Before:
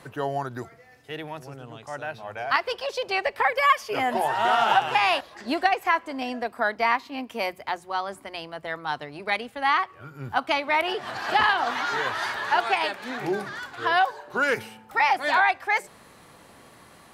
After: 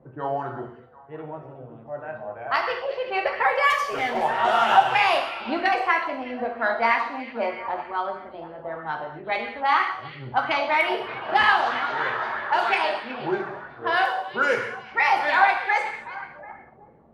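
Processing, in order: level-controlled noise filter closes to 450 Hz, open at -17 dBFS; 3.70–4.24 s: overload inside the chain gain 22.5 dB; on a send: repeats whose band climbs or falls 369 ms, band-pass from 3.2 kHz, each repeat -1.4 oct, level -12 dB; on the sum: gated-style reverb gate 280 ms falling, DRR 1 dB; sweeping bell 3.1 Hz 580–2200 Hz +6 dB; trim -3 dB

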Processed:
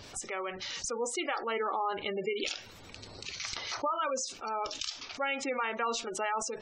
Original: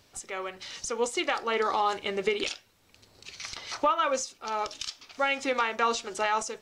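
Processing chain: spectral gate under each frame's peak -20 dB strong; level flattener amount 50%; trim -7.5 dB

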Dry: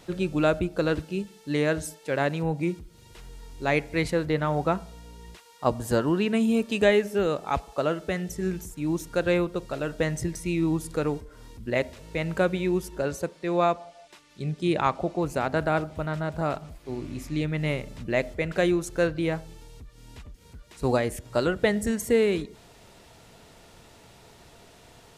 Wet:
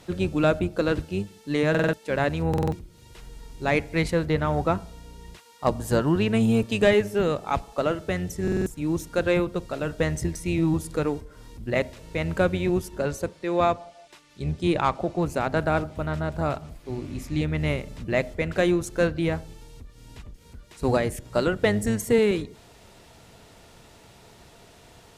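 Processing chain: octave divider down 1 oct, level -5 dB; Chebyshev shaper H 5 -21 dB, 7 -26 dB, 8 -34 dB, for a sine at -7.5 dBFS; buffer glitch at 1.70/2.49/8.43 s, samples 2048, times 4

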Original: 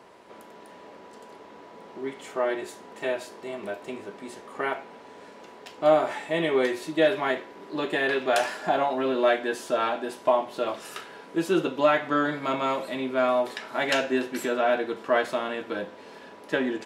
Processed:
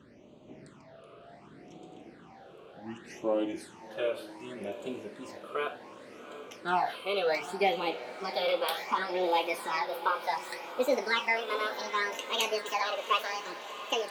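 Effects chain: gliding tape speed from 59% -> 180%; phase shifter stages 8, 0.67 Hz, lowest notch 240–1700 Hz; echo that smears into a reverb 746 ms, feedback 61%, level -13 dB; trim -1.5 dB

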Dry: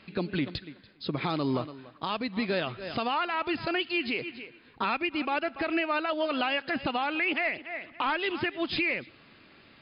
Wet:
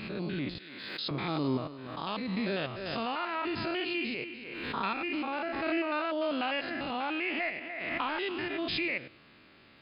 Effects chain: spectrogram pixelated in time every 100 ms; 0.58–1.11 s: high-pass 820 Hz 6 dB/octave; swell ahead of each attack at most 33 dB/s; trim -1 dB

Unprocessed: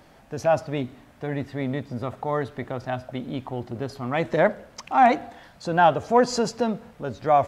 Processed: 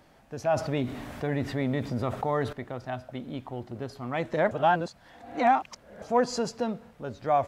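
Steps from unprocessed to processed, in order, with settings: 0.51–2.53 s: level flattener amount 50%; 4.51–6.02 s: reverse; trim -5.5 dB

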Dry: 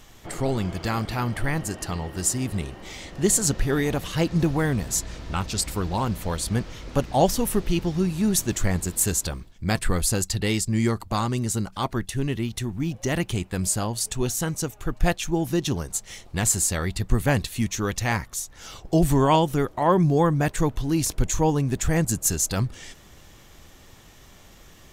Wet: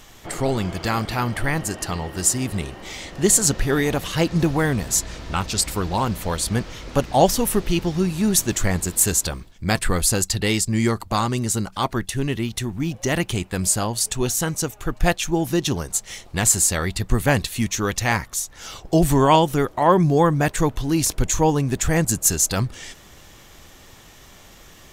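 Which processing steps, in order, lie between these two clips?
bass shelf 340 Hz -4 dB; trim +5 dB

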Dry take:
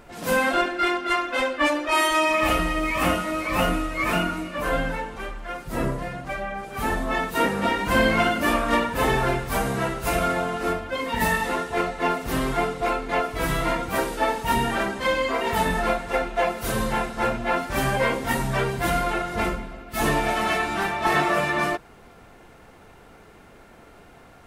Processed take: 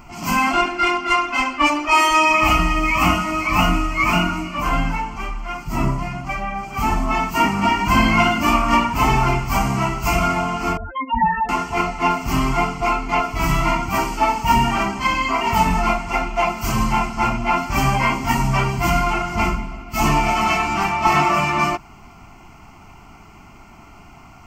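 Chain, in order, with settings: 10.77–11.49 s: spectral contrast enhancement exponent 3.6; static phaser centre 2.5 kHz, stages 8; trim +8.5 dB

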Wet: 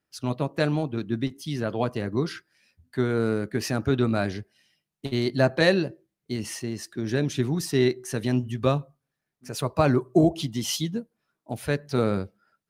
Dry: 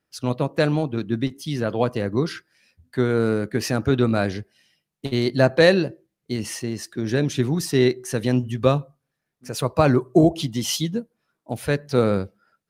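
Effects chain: band-stop 500 Hz, Q 12; trim -3.5 dB

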